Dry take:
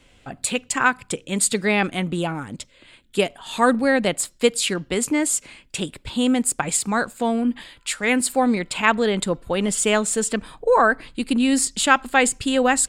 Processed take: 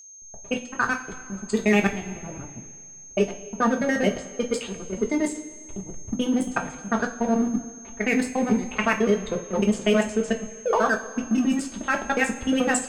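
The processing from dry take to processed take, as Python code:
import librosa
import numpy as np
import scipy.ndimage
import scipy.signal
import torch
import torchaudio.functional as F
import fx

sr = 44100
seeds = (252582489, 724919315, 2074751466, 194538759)

y = fx.local_reverse(x, sr, ms=72.0)
y = fx.spec_gate(y, sr, threshold_db=-20, keep='strong')
y = scipy.signal.sosfilt(scipy.signal.butter(2, 8100.0, 'lowpass', fs=sr, output='sos'), y)
y = fx.peak_eq(y, sr, hz=940.0, db=-6.0, octaves=0.45)
y = fx.level_steps(y, sr, step_db=11)
y = fx.backlash(y, sr, play_db=-28.0)
y = fx.env_lowpass(y, sr, base_hz=480.0, full_db=-20.5)
y = y + 10.0 ** (-43.0 / 20.0) * np.sin(2.0 * np.pi * 6400.0 * np.arange(len(y)) / sr)
y = fx.rev_double_slope(y, sr, seeds[0], early_s=0.27, late_s=2.1, knee_db=-18, drr_db=1.0)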